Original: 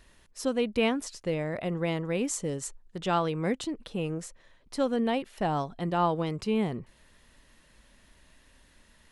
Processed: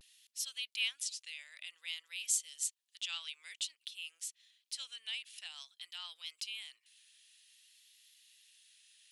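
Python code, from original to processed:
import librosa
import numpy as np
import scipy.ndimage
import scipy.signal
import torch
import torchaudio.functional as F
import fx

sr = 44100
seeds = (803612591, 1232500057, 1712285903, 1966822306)

y = scipy.signal.sosfilt(scipy.signal.cheby1(3, 1.0, 3000.0, 'highpass', fs=sr, output='sos'), x)
y = fx.vibrato(y, sr, rate_hz=0.53, depth_cents=47.0)
y = F.gain(torch.from_numpy(y), 3.0).numpy()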